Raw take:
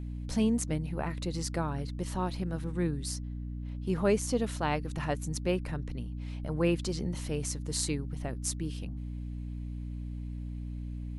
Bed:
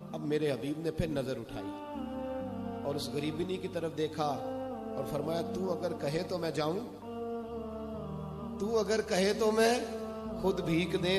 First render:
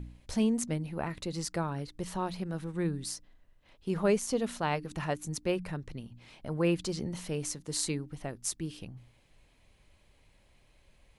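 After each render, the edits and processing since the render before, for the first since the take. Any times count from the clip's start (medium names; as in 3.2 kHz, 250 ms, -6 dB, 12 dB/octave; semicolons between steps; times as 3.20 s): de-hum 60 Hz, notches 5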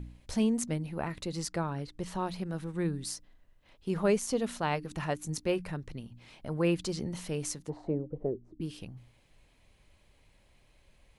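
1.47–2.15 s: treble shelf 10 kHz -9.5 dB; 5.27–5.67 s: doubling 19 ms -13 dB; 7.68–8.60 s: resonant low-pass 860 Hz -> 290 Hz, resonance Q 6.6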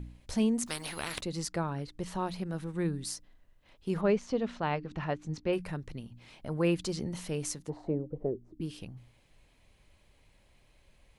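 0.66–1.21 s: spectrum-flattening compressor 4:1; 4.01–5.53 s: distance through air 180 m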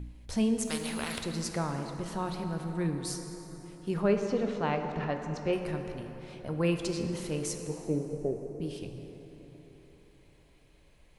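plate-style reverb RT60 4.1 s, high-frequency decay 0.5×, DRR 4.5 dB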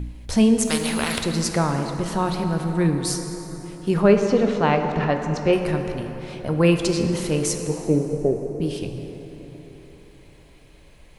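trim +11 dB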